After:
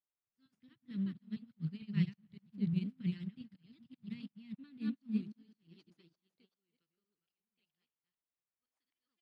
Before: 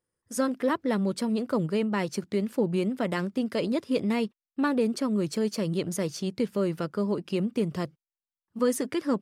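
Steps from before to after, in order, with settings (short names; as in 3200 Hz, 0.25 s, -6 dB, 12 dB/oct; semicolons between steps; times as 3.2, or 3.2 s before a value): reverse delay 0.227 s, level -3 dB; Chebyshev band-stop 100–4300 Hz, order 2; dynamic EQ 4400 Hz, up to +7 dB, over -53 dBFS, Q 0.78; auto swell 0.203 s; added harmonics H 5 -27 dB, 6 -27 dB, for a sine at -20 dBFS; high-pass sweep 140 Hz -> 700 Hz, 3.97–7.61; requantised 10-bit, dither triangular; air absorption 500 m; echo 0.284 s -21 dB; on a send at -23 dB: reverb RT60 2.3 s, pre-delay 50 ms; on the sum: upward expander 2.5:1, over -54 dBFS; gain +3 dB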